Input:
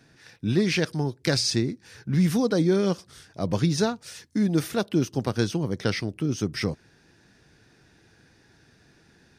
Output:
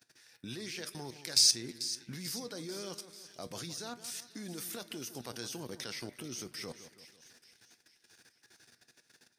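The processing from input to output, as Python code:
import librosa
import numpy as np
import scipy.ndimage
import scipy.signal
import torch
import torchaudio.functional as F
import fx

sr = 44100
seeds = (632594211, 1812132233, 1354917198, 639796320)

y = fx.riaa(x, sr, side='recording')
y = fx.level_steps(y, sr, step_db=19)
y = fx.comb_fb(y, sr, f0_hz=120.0, decay_s=0.21, harmonics='all', damping=0.0, mix_pct=50)
y = fx.echo_split(y, sr, split_hz=2100.0, low_ms=164, high_ms=441, feedback_pct=52, wet_db=-13.0)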